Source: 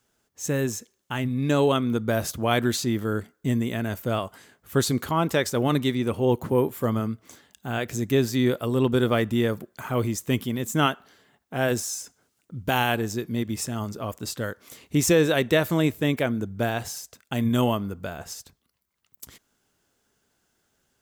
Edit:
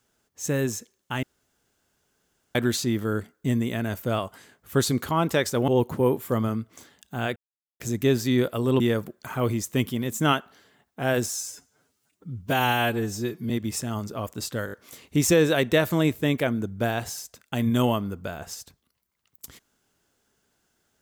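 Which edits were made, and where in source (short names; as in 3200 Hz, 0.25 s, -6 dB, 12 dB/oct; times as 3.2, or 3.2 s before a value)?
1.23–2.55 room tone
5.68–6.2 cut
7.88 insert silence 0.44 s
8.88–9.34 cut
11.97–13.35 stretch 1.5×
14.51 stutter 0.02 s, 4 plays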